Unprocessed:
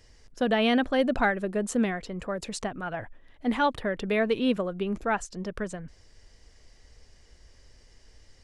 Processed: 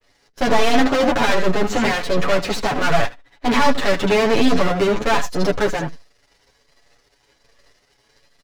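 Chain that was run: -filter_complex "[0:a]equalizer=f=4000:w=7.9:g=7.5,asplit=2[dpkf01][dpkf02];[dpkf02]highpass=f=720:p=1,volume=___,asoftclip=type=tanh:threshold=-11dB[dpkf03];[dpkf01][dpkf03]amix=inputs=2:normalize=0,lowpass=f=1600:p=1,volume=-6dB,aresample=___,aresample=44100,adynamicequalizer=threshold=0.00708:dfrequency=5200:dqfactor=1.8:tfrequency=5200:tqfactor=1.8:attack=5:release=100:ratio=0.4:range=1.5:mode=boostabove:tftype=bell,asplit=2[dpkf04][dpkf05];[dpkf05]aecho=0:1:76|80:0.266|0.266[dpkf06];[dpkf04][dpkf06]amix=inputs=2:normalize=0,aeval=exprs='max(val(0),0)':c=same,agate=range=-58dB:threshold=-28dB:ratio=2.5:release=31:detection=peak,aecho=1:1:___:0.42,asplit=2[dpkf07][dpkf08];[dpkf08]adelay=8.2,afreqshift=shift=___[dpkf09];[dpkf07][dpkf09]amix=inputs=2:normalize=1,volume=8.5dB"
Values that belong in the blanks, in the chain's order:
36dB, 16000, 7.1, 1.3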